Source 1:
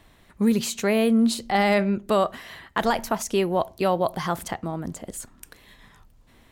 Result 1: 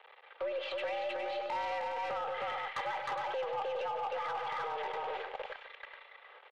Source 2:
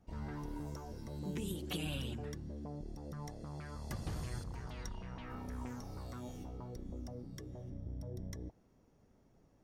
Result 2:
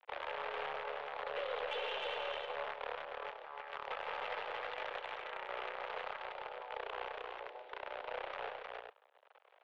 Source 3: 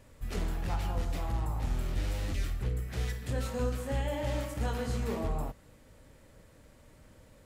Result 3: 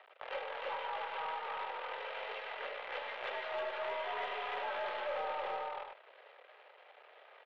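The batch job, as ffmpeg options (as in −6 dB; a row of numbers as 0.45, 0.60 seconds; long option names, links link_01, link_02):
-af "aemphasis=mode=reproduction:type=cd,aecho=1:1:2.7:0.94,acrusher=bits=7:dc=4:mix=0:aa=0.000001,acompressor=threshold=-31dB:ratio=4,highpass=frequency=390:width_type=q:width=0.5412,highpass=frequency=390:width_type=q:width=1.307,lowpass=frequency=3200:width_type=q:width=0.5176,lowpass=frequency=3200:width_type=q:width=0.7071,lowpass=frequency=3200:width_type=q:width=1.932,afreqshift=130,aeval=exprs='0.112*(cos(1*acos(clip(val(0)/0.112,-1,1)))-cos(1*PI/2))+0.00708*(cos(3*acos(clip(val(0)/0.112,-1,1)))-cos(3*PI/2))+0.00398*(cos(7*acos(clip(val(0)/0.112,-1,1)))-cos(7*PI/2))+0.00158*(cos(8*acos(clip(val(0)/0.112,-1,1)))-cos(8*PI/2))':channel_layout=same,asoftclip=type=tanh:threshold=-34.5dB,aecho=1:1:95|149|179|310|412:0.178|0.168|0.141|0.631|0.376,alimiter=level_in=14.5dB:limit=-24dB:level=0:latency=1:release=12,volume=-14.5dB,volume=8.5dB"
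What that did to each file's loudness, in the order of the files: −13.0, +2.5, −5.0 LU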